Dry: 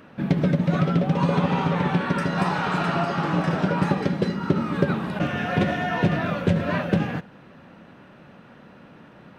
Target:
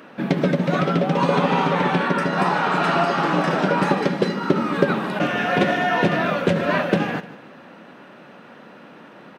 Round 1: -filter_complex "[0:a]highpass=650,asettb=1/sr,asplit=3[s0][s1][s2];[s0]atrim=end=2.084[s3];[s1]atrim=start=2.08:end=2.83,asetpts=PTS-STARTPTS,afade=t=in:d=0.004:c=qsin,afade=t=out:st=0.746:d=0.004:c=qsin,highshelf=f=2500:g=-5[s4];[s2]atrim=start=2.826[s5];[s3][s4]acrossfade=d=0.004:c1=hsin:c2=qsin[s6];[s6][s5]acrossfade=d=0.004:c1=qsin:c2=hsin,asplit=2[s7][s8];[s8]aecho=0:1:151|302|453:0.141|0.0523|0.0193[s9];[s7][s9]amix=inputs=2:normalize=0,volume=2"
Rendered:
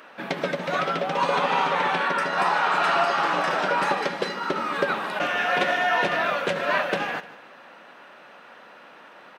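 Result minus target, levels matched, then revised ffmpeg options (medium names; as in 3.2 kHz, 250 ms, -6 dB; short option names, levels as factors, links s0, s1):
250 Hz band -10.0 dB
-filter_complex "[0:a]highpass=250,asettb=1/sr,asplit=3[s0][s1][s2];[s0]atrim=end=2.084[s3];[s1]atrim=start=2.08:end=2.83,asetpts=PTS-STARTPTS,afade=t=in:d=0.004:c=qsin,afade=t=out:st=0.746:d=0.004:c=qsin,highshelf=f=2500:g=-5[s4];[s2]atrim=start=2.826[s5];[s3][s4]acrossfade=d=0.004:c1=hsin:c2=qsin[s6];[s6][s5]acrossfade=d=0.004:c1=qsin:c2=hsin,asplit=2[s7][s8];[s8]aecho=0:1:151|302|453:0.141|0.0523|0.0193[s9];[s7][s9]amix=inputs=2:normalize=0,volume=2"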